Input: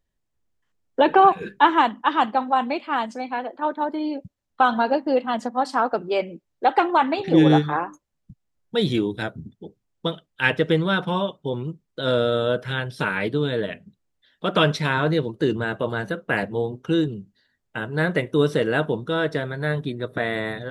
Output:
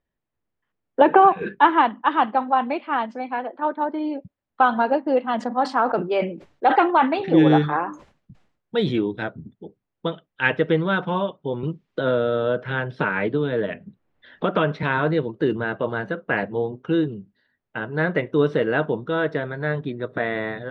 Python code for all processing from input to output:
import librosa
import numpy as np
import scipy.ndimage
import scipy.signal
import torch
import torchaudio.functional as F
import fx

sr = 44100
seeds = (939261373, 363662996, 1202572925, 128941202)

y = fx.chain(x, sr, fx.high_shelf(hz=5600.0, db=-11.5),
    fx.band_squash(depth_pct=100), at=(1.01, 1.55))
y = fx.chain(y, sr, fx.high_shelf(hz=6700.0, db=10.0),
    fx.sustainer(db_per_s=100.0), at=(5.22, 8.92))
y = fx.chain(y, sr, fx.high_shelf(hz=4000.0, db=-8.0),
    fx.band_squash(depth_pct=70), at=(11.63, 14.83))
y = scipy.signal.sosfilt(scipy.signal.butter(2, 2500.0, 'lowpass', fs=sr, output='sos'), y)
y = fx.low_shelf(y, sr, hz=89.0, db=-10.0)
y = y * librosa.db_to_amplitude(1.0)